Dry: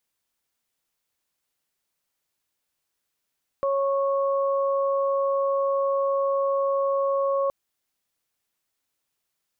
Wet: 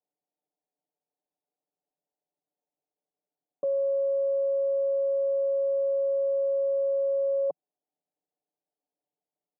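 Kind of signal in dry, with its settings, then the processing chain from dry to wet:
steady harmonic partials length 3.87 s, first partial 551 Hz, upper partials −6 dB, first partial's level −21.5 dB
elliptic band-pass filter 160–760 Hz, stop band 40 dB
low-shelf EQ 330 Hz −10.5 dB
comb filter 6.8 ms, depth 98%

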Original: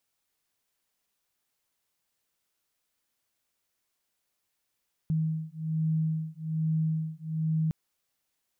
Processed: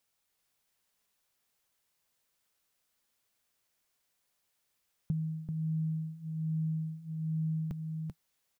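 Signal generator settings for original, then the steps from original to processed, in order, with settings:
two tones that beat 158 Hz, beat 1.2 Hz, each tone −29.5 dBFS 2.61 s
parametric band 310 Hz −3.5 dB 0.33 octaves
on a send: single-tap delay 388 ms −4.5 dB
on the sum: dynamic equaliser 160 Hz, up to −6 dB, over −39 dBFS, Q 6.8

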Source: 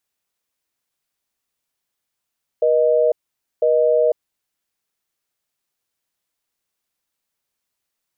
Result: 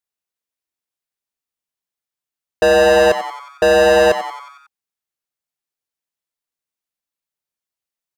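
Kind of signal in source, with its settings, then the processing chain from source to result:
call progress tone busy tone, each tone −15.5 dBFS 1.64 s
leveller curve on the samples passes 5
on a send: echo with shifted repeats 91 ms, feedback 56%, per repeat +130 Hz, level −12 dB

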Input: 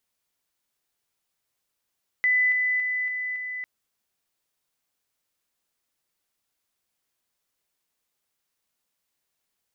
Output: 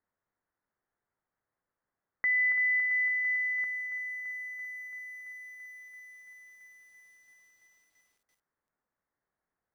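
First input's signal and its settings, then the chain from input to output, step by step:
level staircase 2,000 Hz −18 dBFS, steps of −3 dB, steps 5, 0.28 s 0.00 s
Butterworth low-pass 1,900 Hz 48 dB per octave
feedback echo with a low-pass in the loop 143 ms, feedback 45%, low-pass 1,500 Hz, level −20 dB
feedback echo at a low word length 336 ms, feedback 80%, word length 10 bits, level −13 dB

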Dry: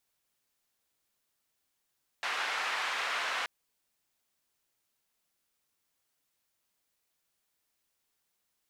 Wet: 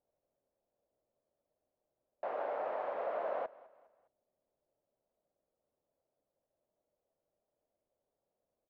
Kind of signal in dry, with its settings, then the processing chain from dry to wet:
band-limited noise 970–2,000 Hz, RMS −33.5 dBFS 1.23 s
low-pass with resonance 590 Hz, resonance Q 4.8
repeating echo 205 ms, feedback 42%, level −21 dB

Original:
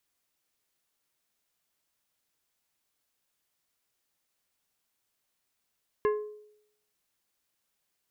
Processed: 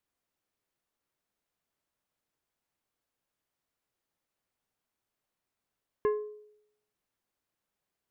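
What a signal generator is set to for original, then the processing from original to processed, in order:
struck glass plate, lowest mode 422 Hz, decay 0.74 s, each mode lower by 7 dB, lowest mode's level −21 dB
high-shelf EQ 2,100 Hz −11 dB

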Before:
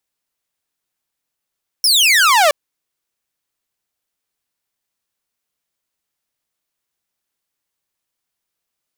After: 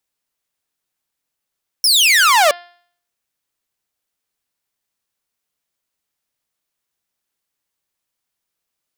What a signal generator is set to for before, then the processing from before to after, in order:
single falling chirp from 5,600 Hz, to 560 Hz, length 0.67 s saw, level −6.5 dB
hum removal 349.9 Hz, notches 15

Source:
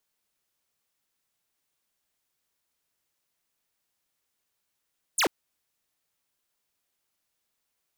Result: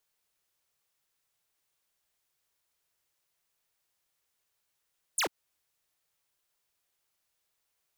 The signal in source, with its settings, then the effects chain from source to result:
single falling chirp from 11,000 Hz, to 250 Hz, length 0.09 s square, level −23 dB
parametric band 240 Hz −9 dB 0.57 octaves
downward compressor, threshold −29 dBFS

